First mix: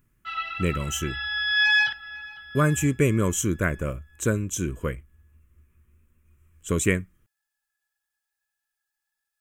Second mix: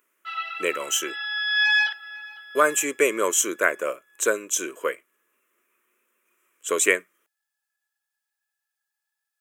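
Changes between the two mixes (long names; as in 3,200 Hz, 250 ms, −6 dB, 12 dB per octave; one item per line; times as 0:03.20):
speech +6.5 dB
master: add high-pass filter 430 Hz 24 dB per octave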